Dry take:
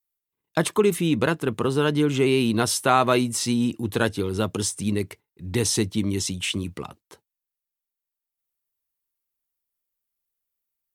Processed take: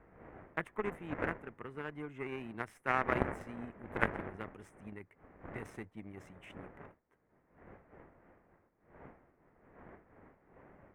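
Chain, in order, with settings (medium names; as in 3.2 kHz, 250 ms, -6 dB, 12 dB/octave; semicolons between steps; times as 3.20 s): wind noise 570 Hz -29 dBFS; Chebyshev shaper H 3 -10 dB, 4 -31 dB, 5 -42 dB, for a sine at -3 dBFS; resonant high shelf 2.9 kHz -13.5 dB, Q 3; trim -6 dB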